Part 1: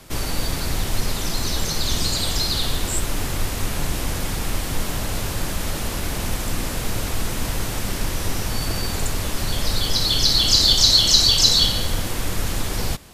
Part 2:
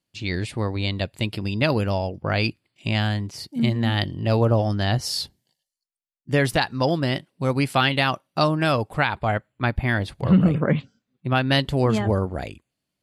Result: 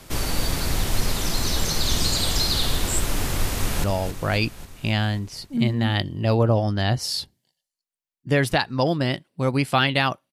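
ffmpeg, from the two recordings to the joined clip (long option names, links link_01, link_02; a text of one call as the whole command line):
ffmpeg -i cue0.wav -i cue1.wav -filter_complex "[0:a]apad=whole_dur=10.32,atrim=end=10.32,atrim=end=3.842[link_01];[1:a]atrim=start=1.858:end=8.34[link_02];[link_01][link_02]acrossfade=duration=0.004:curve1=hsin:curve2=hsin,asplit=2[link_03][link_04];[link_04]afade=type=in:start_time=3.5:duration=0.01,afade=type=out:start_time=3.84:duration=0.01,aecho=0:1:270|540|810|1080|1350|1620|1890|2160|2430:0.354813|0.230629|0.149909|0.0974406|0.0633364|0.0411687|0.0267596|0.0173938|0.0113059[link_05];[link_03][link_05]amix=inputs=2:normalize=0" out.wav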